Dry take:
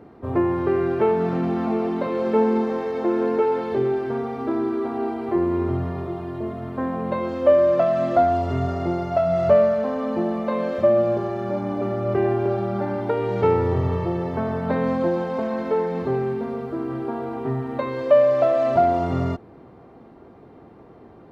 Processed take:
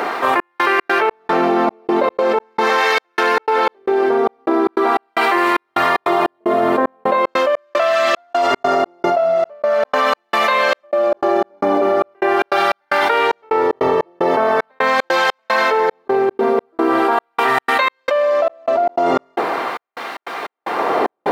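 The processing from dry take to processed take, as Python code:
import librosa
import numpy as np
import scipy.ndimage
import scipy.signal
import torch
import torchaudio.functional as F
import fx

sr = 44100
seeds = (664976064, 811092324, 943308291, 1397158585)

y = fx.filter_lfo_highpass(x, sr, shape='sine', hz=0.41, low_hz=550.0, high_hz=1800.0, q=0.75)
y = fx.dynamic_eq(y, sr, hz=330.0, q=0.99, threshold_db=-44.0, ratio=4.0, max_db=6)
y = fx.step_gate(y, sr, bpm=151, pattern='xxxx..xx.xx..', floor_db=-60.0, edge_ms=4.5)
y = fx.env_flatten(y, sr, amount_pct=100)
y = y * librosa.db_to_amplitude(-2.0)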